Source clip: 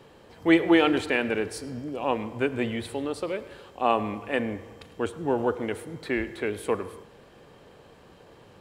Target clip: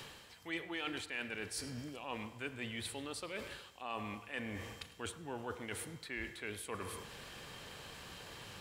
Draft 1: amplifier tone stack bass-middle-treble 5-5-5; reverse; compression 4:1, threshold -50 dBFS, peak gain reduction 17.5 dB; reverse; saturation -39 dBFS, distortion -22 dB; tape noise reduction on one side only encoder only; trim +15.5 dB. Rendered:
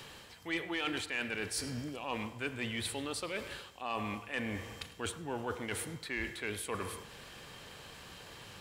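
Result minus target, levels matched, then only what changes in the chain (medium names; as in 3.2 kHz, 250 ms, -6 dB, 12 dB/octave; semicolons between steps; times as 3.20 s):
compression: peak gain reduction -5.5 dB
change: compression 4:1, threshold -57.5 dBFS, peak gain reduction 23 dB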